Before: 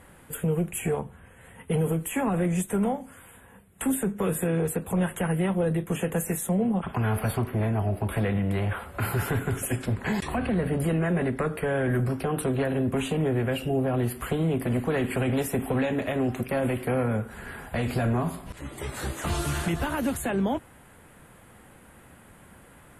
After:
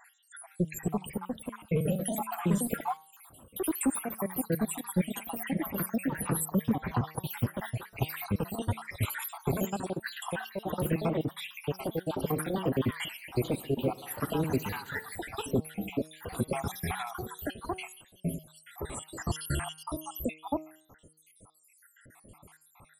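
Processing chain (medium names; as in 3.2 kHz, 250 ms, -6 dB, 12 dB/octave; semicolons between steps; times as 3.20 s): random holes in the spectrogram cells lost 81%; treble shelf 6.6 kHz +6 dB; de-hum 156.6 Hz, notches 20; ever faster or slower copies 435 ms, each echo +3 st, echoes 2; 13.16–15.19 s: multi-head delay 67 ms, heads first and second, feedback 56%, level -23.5 dB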